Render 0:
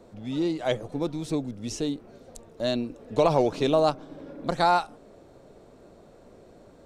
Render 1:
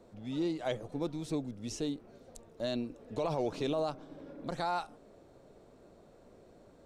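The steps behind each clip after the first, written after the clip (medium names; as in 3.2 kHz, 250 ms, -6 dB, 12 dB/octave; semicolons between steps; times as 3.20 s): peak limiter -16.5 dBFS, peak gain reduction 7.5 dB; trim -6.5 dB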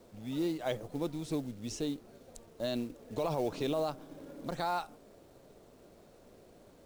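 companded quantiser 6-bit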